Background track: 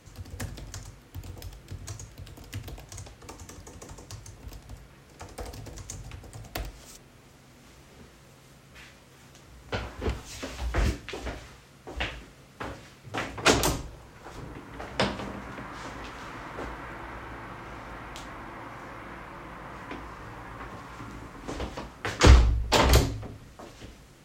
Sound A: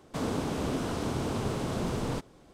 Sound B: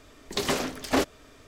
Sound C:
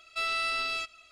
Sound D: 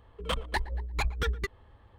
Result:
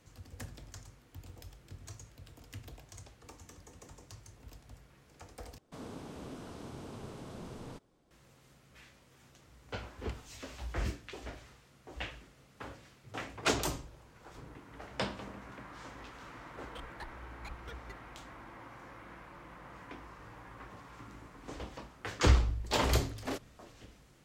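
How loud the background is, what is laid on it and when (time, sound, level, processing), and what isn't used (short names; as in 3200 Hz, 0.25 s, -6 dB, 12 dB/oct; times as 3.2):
background track -9 dB
5.58 replace with A -14.5 dB
16.46 add D -17.5 dB
22.34 add B -14.5 dB
not used: C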